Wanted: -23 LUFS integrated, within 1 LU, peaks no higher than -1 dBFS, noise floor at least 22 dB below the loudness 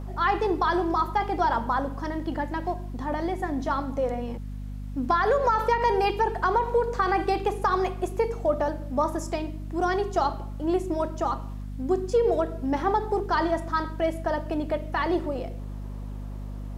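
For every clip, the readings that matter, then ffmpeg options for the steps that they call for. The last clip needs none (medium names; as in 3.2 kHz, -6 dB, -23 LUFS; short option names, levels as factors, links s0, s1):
hum 50 Hz; highest harmonic 250 Hz; hum level -32 dBFS; loudness -26.5 LUFS; peak level -11.5 dBFS; loudness target -23.0 LUFS
-> -af "bandreject=f=50:t=h:w=4,bandreject=f=100:t=h:w=4,bandreject=f=150:t=h:w=4,bandreject=f=200:t=h:w=4,bandreject=f=250:t=h:w=4"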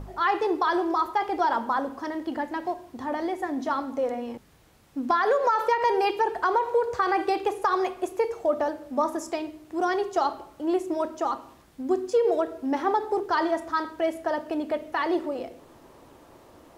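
hum not found; loudness -26.5 LUFS; peak level -12.0 dBFS; loudness target -23.0 LUFS
-> -af "volume=1.5"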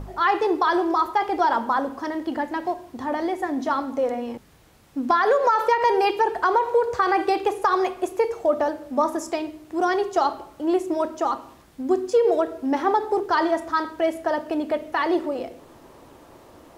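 loudness -23.0 LUFS; peak level -8.5 dBFS; noise floor -50 dBFS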